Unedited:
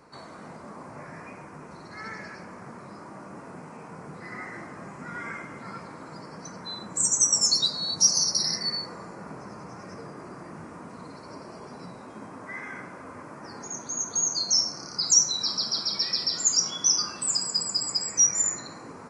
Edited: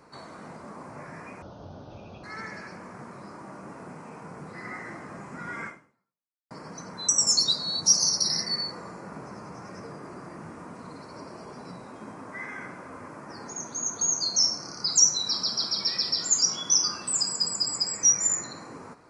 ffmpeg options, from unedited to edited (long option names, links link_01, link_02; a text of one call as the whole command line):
ffmpeg -i in.wav -filter_complex "[0:a]asplit=5[link_01][link_02][link_03][link_04][link_05];[link_01]atrim=end=1.424[link_06];[link_02]atrim=start=1.42:end=1.91,asetpts=PTS-STARTPTS,asetrate=26460,aresample=44100[link_07];[link_03]atrim=start=1.906:end=6.18,asetpts=PTS-STARTPTS,afade=type=out:start_time=3.434:duration=0.84:curve=exp[link_08];[link_04]atrim=start=6.18:end=6.762,asetpts=PTS-STARTPTS,afade=type=in:duration=0.004:curve=hsin[link_09];[link_05]atrim=start=7.228[link_10];[link_06][link_07]acrossfade=duration=0.004:curve1=hsin:curve2=hsin[link_11];[link_08][link_09]concat=n=2:v=0:a=1[link_12];[link_11][link_12]acrossfade=duration=0.004:curve1=hsin:curve2=hsin[link_13];[link_13][link_10]acrossfade=duration=0.004:curve1=hsin:curve2=hsin" out.wav